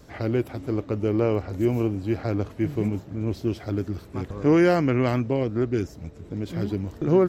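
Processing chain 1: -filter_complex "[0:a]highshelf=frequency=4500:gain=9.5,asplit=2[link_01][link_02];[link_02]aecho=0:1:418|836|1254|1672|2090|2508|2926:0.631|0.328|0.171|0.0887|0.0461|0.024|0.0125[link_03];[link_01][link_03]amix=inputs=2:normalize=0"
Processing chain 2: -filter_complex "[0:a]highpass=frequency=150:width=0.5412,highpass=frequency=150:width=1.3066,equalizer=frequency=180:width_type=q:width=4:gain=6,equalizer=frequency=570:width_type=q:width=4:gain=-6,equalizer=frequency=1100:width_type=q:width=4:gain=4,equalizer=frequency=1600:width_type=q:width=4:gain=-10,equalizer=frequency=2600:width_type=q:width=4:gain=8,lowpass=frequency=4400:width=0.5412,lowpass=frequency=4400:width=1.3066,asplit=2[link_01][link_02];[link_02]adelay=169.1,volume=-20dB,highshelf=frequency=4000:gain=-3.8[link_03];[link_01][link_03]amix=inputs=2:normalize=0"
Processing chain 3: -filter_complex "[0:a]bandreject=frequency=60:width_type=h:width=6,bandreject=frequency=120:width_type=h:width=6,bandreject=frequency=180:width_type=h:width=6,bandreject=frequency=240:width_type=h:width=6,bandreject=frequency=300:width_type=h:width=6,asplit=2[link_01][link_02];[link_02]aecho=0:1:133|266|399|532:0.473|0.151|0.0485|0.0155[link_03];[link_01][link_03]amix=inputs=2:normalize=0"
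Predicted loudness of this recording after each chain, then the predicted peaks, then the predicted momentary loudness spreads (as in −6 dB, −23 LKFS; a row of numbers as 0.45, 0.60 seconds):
−23.5, −26.0, −25.0 LKFS; −6.5, −7.5, −7.5 dBFS; 9, 11, 12 LU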